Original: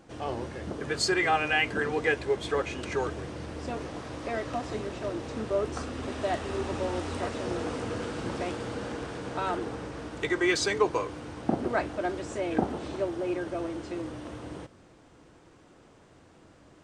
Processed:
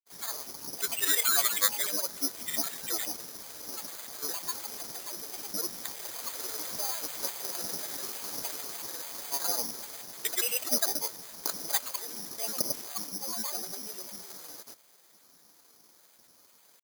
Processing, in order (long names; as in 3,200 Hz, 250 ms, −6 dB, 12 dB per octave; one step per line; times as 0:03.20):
high-pass filter 1,200 Hz 6 dB per octave
granular cloud, pitch spread up and down by 12 semitones
bad sample-rate conversion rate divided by 8×, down filtered, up zero stuff
level −3 dB